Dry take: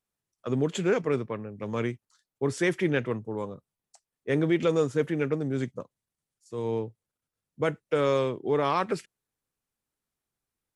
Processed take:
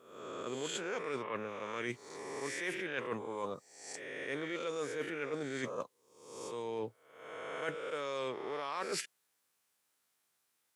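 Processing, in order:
peak hold with a rise ahead of every peak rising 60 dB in 0.77 s
high-pass filter 990 Hz 6 dB per octave
reversed playback
downward compressor 12 to 1, threshold −43 dBFS, peak gain reduction 20.5 dB
reversed playback
level +8 dB

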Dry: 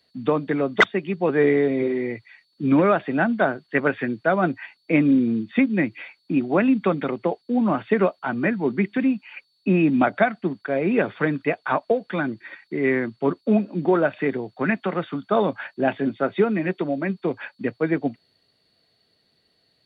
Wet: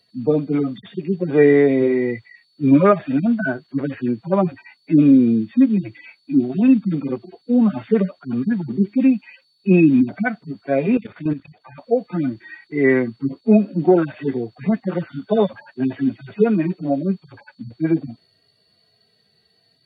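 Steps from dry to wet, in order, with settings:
harmonic-percussive split with one part muted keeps harmonic
0:10.97–0:11.78: output level in coarse steps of 12 dB
level +6 dB

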